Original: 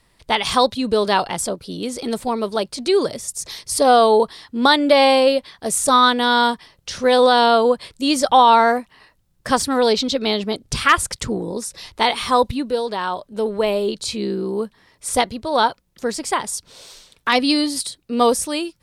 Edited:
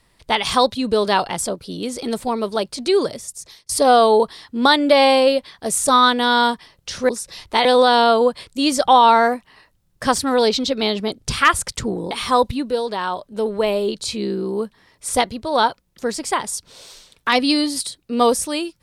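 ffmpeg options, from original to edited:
-filter_complex "[0:a]asplit=5[a][b][c][d][e];[a]atrim=end=3.69,asetpts=PTS-STARTPTS,afade=t=out:st=3:d=0.69:silence=0.0707946[f];[b]atrim=start=3.69:end=7.092,asetpts=PTS-STARTPTS,afade=t=in:d=0.004:c=hsin:silence=0.0707946[g];[c]atrim=start=11.548:end=12.112[h];[d]atrim=start=7.088:end=11.552[i];[e]atrim=start=12.108[j];[f][g]concat=n=2:v=0:a=1[k];[k][h]acrossfade=d=0.004:c1=hsin:c2=hsin[l];[l][i]acrossfade=d=0.004:c1=hsin:c2=hsin[m];[m][j]acrossfade=d=0.004:c1=hsin:c2=hsin"

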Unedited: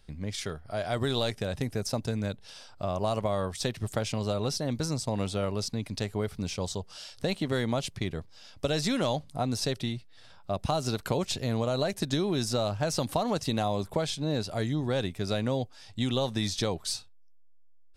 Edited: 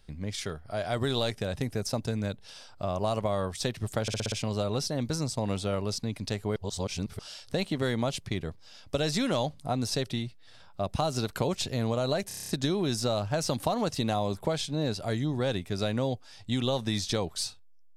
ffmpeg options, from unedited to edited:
-filter_complex "[0:a]asplit=15[a][b][c][d][e][f][g][h][i][j][k][l][m][n][o];[a]atrim=end=4.082[p];[b]atrim=start=4.018:end=4.082[q];[c]atrim=start=4.018:end=4.082[r];[d]atrim=start=4.018:end=4.082[s];[e]atrim=start=4.018:end=4.082[t];[f]atrim=start=4.018:end=6.262[u];[g]atrim=start=6.258:end=6.892,asetpts=PTS-STARTPTS,areverse[v];[h]atrim=start=6.888:end=12.012[w];[i]atrim=start=11.978:end=12.012[x];[j]atrim=start=11.978:end=12.012[y];[k]atrim=start=11.978:end=12.012[z];[l]atrim=start=11.978:end=12.012[aa];[m]atrim=start=11.978:end=12.012[ab];[n]atrim=start=11.978:end=12.012[ac];[o]atrim=start=11.978[ad];[p][q]acrossfade=d=0.004:c1=hsin:c2=hsin[ae];[ae][r]acrossfade=d=0.004:c1=hsin:c2=hsin[af];[af][s]acrossfade=d=0.004:c1=hsin:c2=hsin[ag];[ag][t]acrossfade=d=0.004:c1=hsin:c2=hsin[ah];[ah][u]acrossfade=d=0.004:c1=hsin:c2=hsin[ai];[ai][v]acrossfade=d=0.004:c1=hsin:c2=hsin[aj];[aj][w]acrossfade=d=0.004:c1=hsin:c2=hsin[ak];[ak][x]acrossfade=d=0.004:c1=hsin:c2=hsin[al];[al][y]acrossfade=d=0.004:c1=hsin:c2=hsin[am];[am][z]acrossfade=d=0.004:c1=hsin:c2=hsin[an];[an][aa]acrossfade=d=0.004:c1=hsin:c2=hsin[ao];[ao][ab]acrossfade=d=0.004:c1=hsin:c2=hsin[ap];[ap][ac]acrossfade=d=0.004:c1=hsin:c2=hsin[aq];[aq][ad]acrossfade=d=0.004:c1=hsin:c2=hsin"

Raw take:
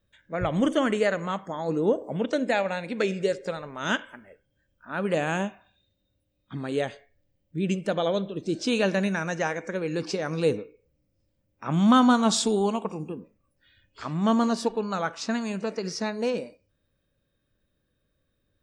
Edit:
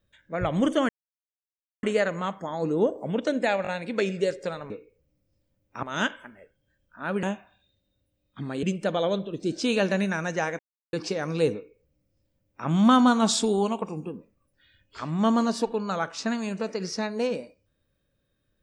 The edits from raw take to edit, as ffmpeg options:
-filter_complex "[0:a]asplit=10[a][b][c][d][e][f][g][h][i][j];[a]atrim=end=0.89,asetpts=PTS-STARTPTS,afade=t=out:st=0.886:d=0.004:c=hsin,apad=pad_dur=0.94[k];[b]atrim=start=0.89:end=2.712,asetpts=PTS-STARTPTS,afade=t=in:d=0.004:c=hsin[l];[c]atrim=start=2.688:end=2.712[m];[d]atrim=start=2.688:end=3.722[n];[e]atrim=start=10.568:end=11.702[o];[f]atrim=start=3.718:end=5.122[p];[g]atrim=start=5.368:end=6.772[q];[h]atrim=start=7.658:end=9.62,asetpts=PTS-STARTPTS,afade=t=out:st=1.958:d=0.004:c=hsin[r];[i]atrim=start=9.62:end=9.96,asetpts=PTS-STARTPTS,volume=0[s];[j]atrim=start=9.96,asetpts=PTS-STARTPTS,afade=t=in:d=0.004:c=hsin[t];[k][l]concat=n=2:v=0:a=1[u];[u][m]acrossfade=d=0.004:c1=hsin:c2=hsin[v];[v][n]acrossfade=d=0.004:c1=hsin:c2=hsin[w];[w][o]acrossfade=d=0.004:c1=hsin:c2=hsin[x];[x][p]acrossfade=d=0.004:c1=hsin:c2=hsin[y];[y][q]acrossfade=d=0.004:c1=hsin:c2=hsin[z];[r][s][t]concat=n=3:v=0:a=1[aa];[z][aa]acrossfade=d=0.004:c1=hsin:c2=hsin"

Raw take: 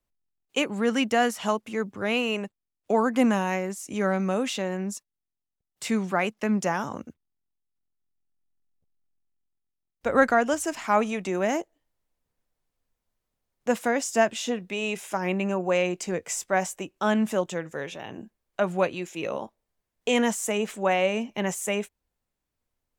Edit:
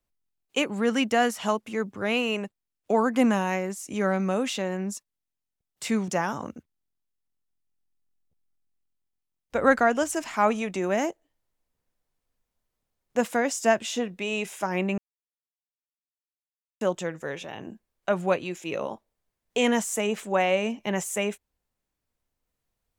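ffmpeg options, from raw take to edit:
-filter_complex "[0:a]asplit=4[a][b][c][d];[a]atrim=end=6.082[e];[b]atrim=start=6.588:end=15.49,asetpts=PTS-STARTPTS,afade=t=out:st=8.898:d=0.004:c=hsin[f];[c]atrim=start=15.49:end=17.32,asetpts=PTS-STARTPTS,volume=0[g];[d]atrim=start=17.32,asetpts=PTS-STARTPTS,afade=t=in:d=0.004:c=hsin[h];[f][g][h]concat=n=3:v=0:a=1[i];[e][i]acrossfade=d=0.004:c1=hsin:c2=hsin"

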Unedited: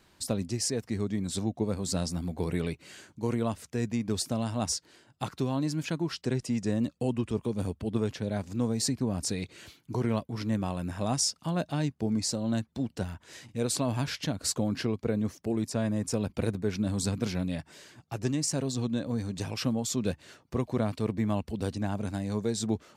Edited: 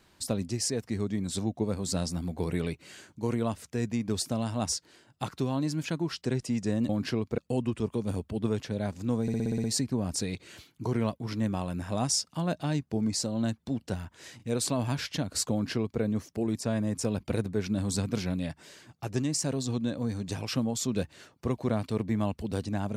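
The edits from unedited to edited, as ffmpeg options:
-filter_complex "[0:a]asplit=10[a][b][c][d][e][f][g][h][i][j];[a]atrim=end=6.892[k];[b]atrim=start=14.608:end=15.102[l];[c]atrim=start=6.888:end=8.792[m];[d]atrim=start=8.728:end=8.792[n];[e]atrim=start=8.728:end=8.792[o];[f]atrim=start=8.728:end=8.792[p];[g]atrim=start=8.728:end=8.792[q];[h]atrim=start=8.728:end=8.792[r];[i]atrim=start=8.728:end=8.792[s];[j]atrim=start=8.728[t];[k][l]acrossfade=d=0.004:c1=hsin:c2=hsin[u];[u][m]acrossfade=d=0.004:c1=hsin:c2=hsin[v];[v][n]acrossfade=d=0.004:c1=hsin:c2=hsin[w];[w][o]acrossfade=d=0.004:c1=hsin:c2=hsin[x];[x][p]acrossfade=d=0.004:c1=hsin:c2=hsin[y];[y][q]acrossfade=d=0.004:c1=hsin:c2=hsin[z];[z][r]acrossfade=d=0.004:c1=hsin:c2=hsin[aa];[aa][s]acrossfade=d=0.004:c1=hsin:c2=hsin[ab];[ab][t]acrossfade=d=0.004:c1=hsin:c2=hsin"

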